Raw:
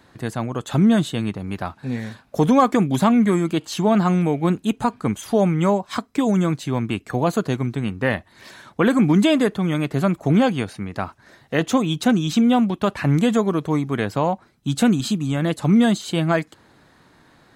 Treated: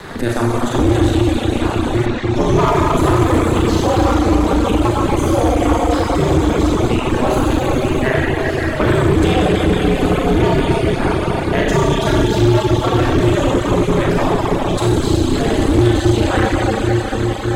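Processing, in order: 14.23–14.92 compressor, threshold -20 dBFS, peak gain reduction 8 dB; on a send: diffused feedback echo 0.452 s, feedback 79%, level -16 dB; on the sum: Schroeder reverb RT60 3.8 s, combs from 30 ms, DRR -9 dB; ring modulator 120 Hz; reverb removal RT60 0.87 s; 2.05–2.65 LPF 4200 Hz -> 9900 Hz 12 dB/oct; in parallel at -5 dB: wavefolder -11 dBFS; 3.22–4.13 on the sum: crackle 540/s -32 dBFS; three-band squash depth 70%; gain -2 dB

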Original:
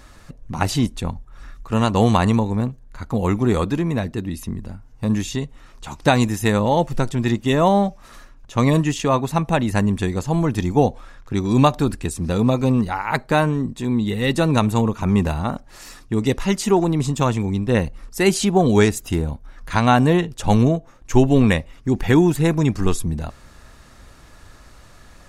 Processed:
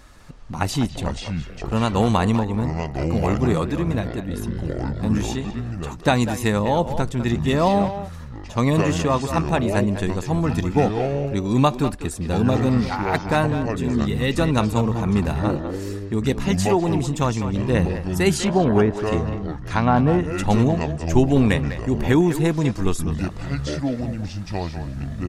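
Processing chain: 18.37–20.25 treble ducked by the level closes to 1300 Hz, closed at -10.5 dBFS; echoes that change speed 0.198 s, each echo -6 st, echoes 2, each echo -6 dB; speakerphone echo 0.2 s, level -9 dB; gain -2.5 dB

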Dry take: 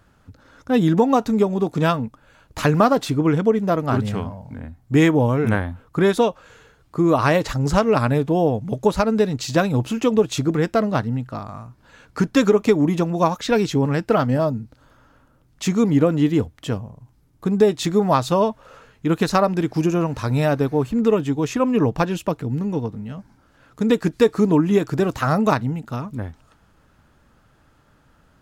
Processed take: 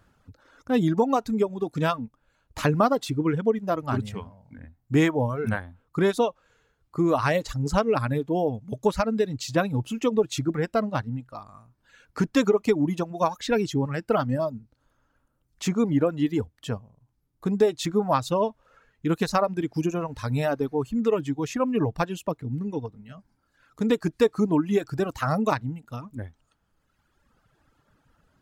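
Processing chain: reverb removal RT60 1.8 s; gain -4.5 dB

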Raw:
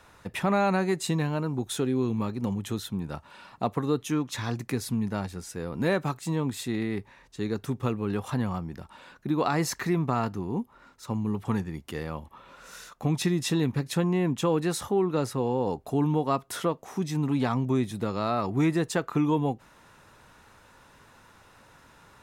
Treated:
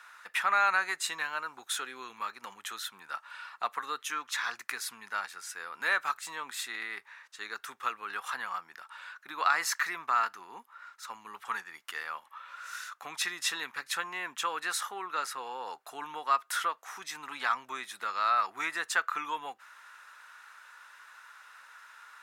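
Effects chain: resonant high-pass 1400 Hz, resonance Q 2.5

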